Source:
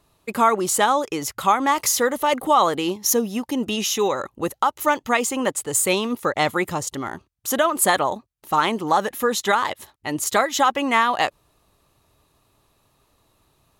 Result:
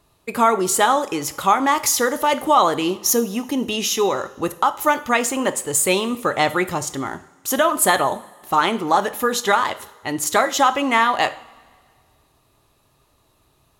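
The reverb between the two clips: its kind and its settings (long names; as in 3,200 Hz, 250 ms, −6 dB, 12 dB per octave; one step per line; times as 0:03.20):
coupled-rooms reverb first 0.47 s, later 1.9 s, from −16 dB, DRR 10 dB
level +1.5 dB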